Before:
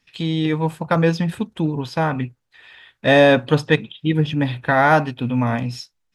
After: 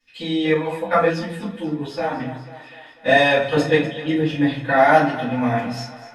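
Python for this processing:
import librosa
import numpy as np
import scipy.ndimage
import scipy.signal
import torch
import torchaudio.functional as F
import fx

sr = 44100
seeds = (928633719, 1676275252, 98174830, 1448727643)

p1 = fx.spec_quant(x, sr, step_db=15)
p2 = fx.low_shelf(p1, sr, hz=210.0, db=-11.0)
p3 = p2 + fx.echo_thinned(p2, sr, ms=246, feedback_pct=63, hz=290.0, wet_db=-15.0, dry=0)
p4 = fx.room_shoebox(p3, sr, seeds[0], volume_m3=33.0, walls='mixed', distance_m=1.9)
p5 = fx.spec_box(p4, sr, start_s=0.45, length_s=0.64, low_hz=470.0, high_hz=2600.0, gain_db=6)
p6 = fx.peak_eq(p5, sr, hz=290.0, db=-14.0, octaves=0.77, at=(3.17, 3.57))
p7 = fx.ensemble(p6, sr, at=(0.54, 2.2))
y = p7 * 10.0 ** (-9.5 / 20.0)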